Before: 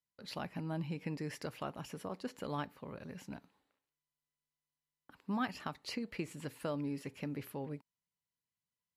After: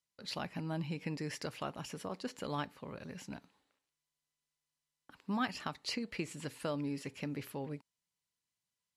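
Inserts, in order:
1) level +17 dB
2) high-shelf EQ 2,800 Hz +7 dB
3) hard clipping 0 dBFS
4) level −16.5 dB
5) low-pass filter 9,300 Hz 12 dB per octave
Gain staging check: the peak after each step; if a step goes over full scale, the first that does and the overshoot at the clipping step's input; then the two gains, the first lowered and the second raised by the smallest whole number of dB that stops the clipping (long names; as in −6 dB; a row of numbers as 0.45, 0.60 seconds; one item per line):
−7.5, −6.0, −6.0, −22.5, −22.5 dBFS
no step passes full scale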